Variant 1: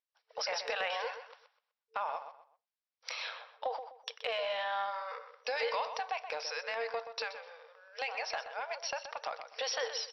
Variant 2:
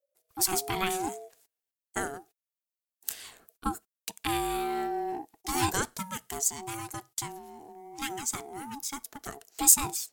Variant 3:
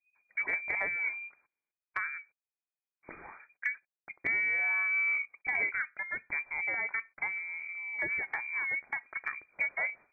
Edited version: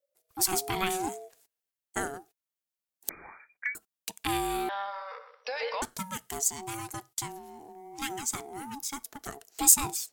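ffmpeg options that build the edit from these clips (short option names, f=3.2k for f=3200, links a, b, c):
-filter_complex "[1:a]asplit=3[a][b][c];[a]atrim=end=3.092[d];[2:a]atrim=start=3.088:end=3.752[e];[b]atrim=start=3.748:end=4.692[f];[0:a]atrim=start=4.688:end=5.822[g];[c]atrim=start=5.818[h];[d][e]acrossfade=d=0.004:c1=hsin:c2=hsin[i];[i][f]acrossfade=d=0.004:c1=hsin:c2=hsin[j];[j][g]acrossfade=d=0.004:c1=hsin:c2=hsin[k];[k][h]acrossfade=d=0.004:c1=hsin:c2=hsin"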